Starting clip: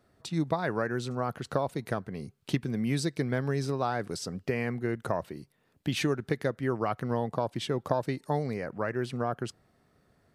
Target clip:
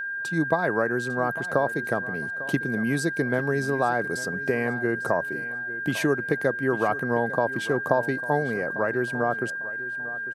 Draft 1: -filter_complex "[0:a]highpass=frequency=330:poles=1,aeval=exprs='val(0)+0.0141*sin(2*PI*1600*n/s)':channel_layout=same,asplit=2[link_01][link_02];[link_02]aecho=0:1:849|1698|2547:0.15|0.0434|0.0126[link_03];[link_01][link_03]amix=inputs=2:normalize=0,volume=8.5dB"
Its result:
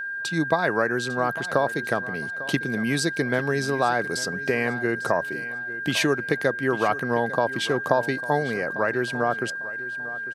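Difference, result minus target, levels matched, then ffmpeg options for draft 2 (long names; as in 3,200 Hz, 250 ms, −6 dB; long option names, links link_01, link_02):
4,000 Hz band +9.0 dB
-filter_complex "[0:a]highpass=frequency=330:poles=1,equalizer=frequency=3800:width=0.55:gain=-10.5,aeval=exprs='val(0)+0.0141*sin(2*PI*1600*n/s)':channel_layout=same,asplit=2[link_01][link_02];[link_02]aecho=0:1:849|1698|2547:0.15|0.0434|0.0126[link_03];[link_01][link_03]amix=inputs=2:normalize=0,volume=8.5dB"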